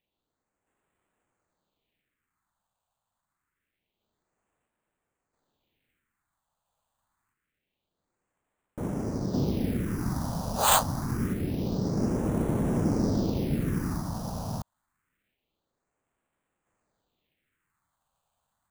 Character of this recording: aliases and images of a low sample rate 5400 Hz, jitter 0%; phasing stages 4, 0.26 Hz, lowest notch 340–4700 Hz; random-step tremolo 1.5 Hz

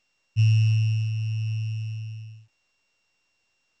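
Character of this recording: a buzz of ramps at a fixed pitch in blocks of 16 samples; A-law

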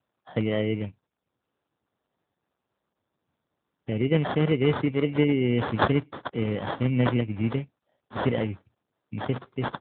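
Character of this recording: aliases and images of a low sample rate 2500 Hz, jitter 0%; AMR-NB

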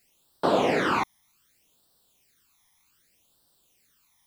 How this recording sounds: a quantiser's noise floor 12-bit, dither triangular; phasing stages 12, 0.65 Hz, lowest notch 460–2300 Hz

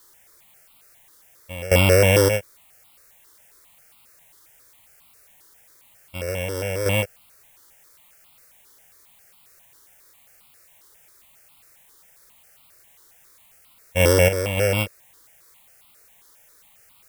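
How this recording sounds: a buzz of ramps at a fixed pitch in blocks of 16 samples; random-step tremolo, depth 95%; a quantiser's noise floor 10-bit, dither triangular; notches that jump at a steady rate 7.4 Hz 680–1700 Hz

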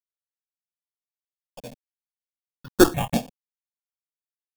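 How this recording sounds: aliases and images of a low sample rate 2000 Hz, jitter 0%; random-step tremolo, depth 75%; a quantiser's noise floor 8-bit, dither none; notches that jump at a steady rate 5.1 Hz 360–2300 Hz

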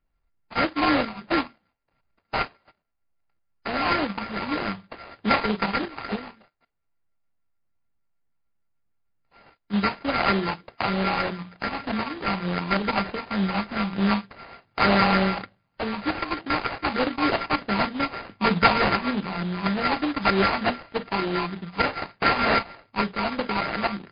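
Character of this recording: a buzz of ramps at a fixed pitch in blocks of 32 samples; phasing stages 8, 3.3 Hz, lowest notch 450–1200 Hz; aliases and images of a low sample rate 3500 Hz, jitter 20%; MP3

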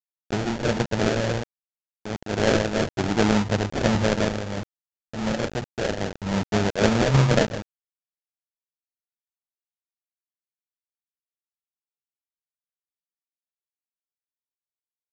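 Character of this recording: a quantiser's noise floor 6-bit, dither none; random-step tremolo; aliases and images of a low sample rate 1100 Hz, jitter 20%; µ-law

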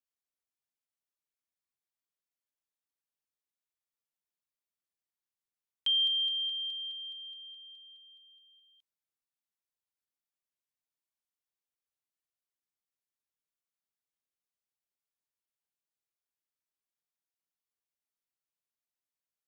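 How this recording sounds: noise floor -94 dBFS; spectral tilt 0.0 dB/oct

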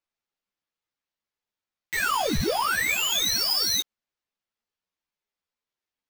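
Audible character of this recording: aliases and images of a low sample rate 10000 Hz, jitter 0%; a shimmering, thickened sound

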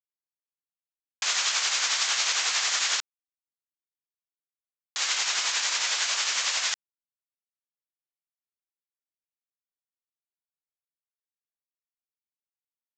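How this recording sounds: tremolo triangle 11 Hz, depth 50%; a quantiser's noise floor 10-bit, dither none; µ-law

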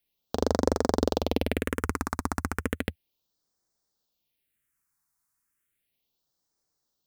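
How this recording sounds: phasing stages 4, 0.34 Hz, lowest notch 490–2700 Hz

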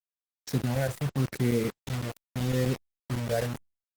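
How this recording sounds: chopped level 7.9 Hz, depth 65%, duty 90%; phasing stages 6, 0.81 Hz, lowest notch 290–1100 Hz; a quantiser's noise floor 6-bit, dither none; Opus

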